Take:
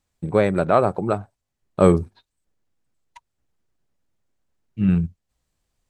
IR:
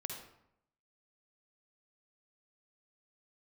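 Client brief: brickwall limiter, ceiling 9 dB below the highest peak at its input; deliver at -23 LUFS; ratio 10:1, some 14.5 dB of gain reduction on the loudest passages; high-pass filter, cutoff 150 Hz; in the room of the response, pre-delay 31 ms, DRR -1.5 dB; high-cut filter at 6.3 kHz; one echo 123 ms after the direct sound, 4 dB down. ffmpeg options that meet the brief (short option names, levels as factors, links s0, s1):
-filter_complex "[0:a]highpass=150,lowpass=6300,acompressor=threshold=0.0562:ratio=10,alimiter=limit=0.1:level=0:latency=1,aecho=1:1:123:0.631,asplit=2[s0][s1];[1:a]atrim=start_sample=2205,adelay=31[s2];[s1][s2]afir=irnorm=-1:irlink=0,volume=1.33[s3];[s0][s3]amix=inputs=2:normalize=0,volume=1.88"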